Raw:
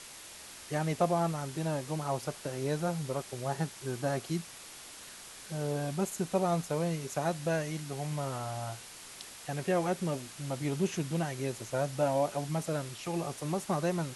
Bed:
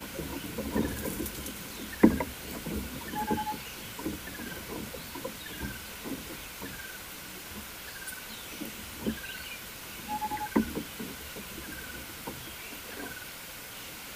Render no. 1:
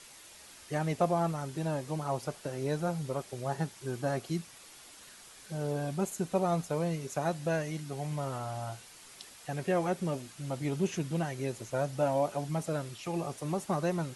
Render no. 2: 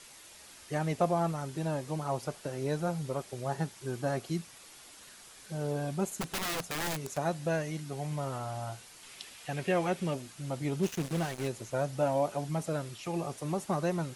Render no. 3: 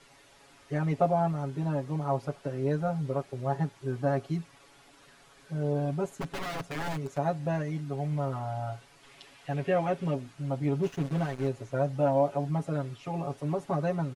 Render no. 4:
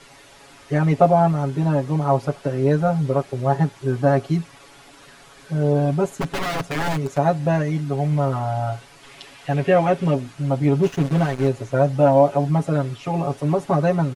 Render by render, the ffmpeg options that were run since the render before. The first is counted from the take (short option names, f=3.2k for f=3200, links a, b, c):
-af "afftdn=nr=6:nf=-49"
-filter_complex "[0:a]asplit=3[a][b][c];[a]afade=t=out:st=6.2:d=0.02[d];[b]aeval=exprs='(mod(28.2*val(0)+1,2)-1)/28.2':c=same,afade=t=in:st=6.2:d=0.02,afade=t=out:st=7.16:d=0.02[e];[c]afade=t=in:st=7.16:d=0.02[f];[d][e][f]amix=inputs=3:normalize=0,asettb=1/sr,asplit=3[g][h][i];[g]atrim=end=9.034[j];[h]atrim=start=9.03:end=10.14,asetpts=PTS-STARTPTS,afade=t=in:d=0.004:c=qsin,afade=t=out:st=1.106:d=0.004:c=qsin,equalizer=f=2.7k:w=1.3:g=6.5[k];[i]atrim=start=10.136[l];[j][k]acrossfade=d=0.004:c1=hsin:c2=qsin[m];[m][l]acrossfade=d=0.004:c1=qsin:c2=hsin,asplit=3[n][o][p];[n]afade=t=out:st=10.82:d=0.02[q];[o]acrusher=bits=5:mix=0:aa=0.5,afade=t=in:st=10.82:d=0.02,afade=t=out:st=11.47:d=0.02[r];[p]afade=t=in:st=11.47:d=0.02[s];[q][r][s]amix=inputs=3:normalize=0"
-af "lowpass=f=1.5k:p=1,aecho=1:1:7.2:0.86"
-af "volume=10.5dB"